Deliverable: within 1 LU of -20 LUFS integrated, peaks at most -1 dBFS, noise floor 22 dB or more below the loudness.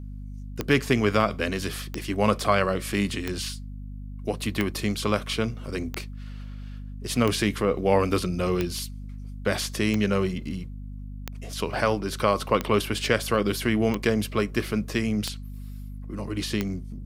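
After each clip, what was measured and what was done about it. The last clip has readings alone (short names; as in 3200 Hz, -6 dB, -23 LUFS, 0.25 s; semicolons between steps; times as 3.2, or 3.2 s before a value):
clicks 13; hum 50 Hz; harmonics up to 250 Hz; hum level -35 dBFS; loudness -26.0 LUFS; peak -6.0 dBFS; loudness target -20.0 LUFS
-> de-click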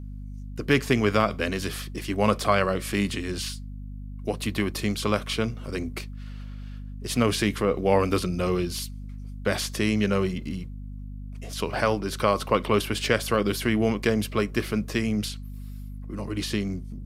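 clicks 0; hum 50 Hz; harmonics up to 250 Hz; hum level -35 dBFS
-> notches 50/100/150/200/250 Hz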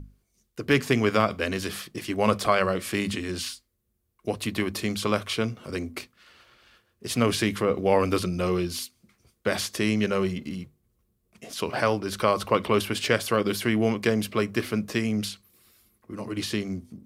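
hum none; loudness -26.5 LUFS; peak -6.5 dBFS; loudness target -20.0 LUFS
-> gain +6.5 dB; limiter -1 dBFS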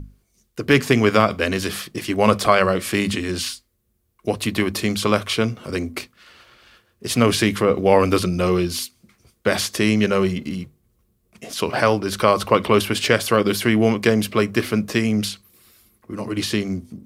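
loudness -20.0 LUFS; peak -1.0 dBFS; noise floor -67 dBFS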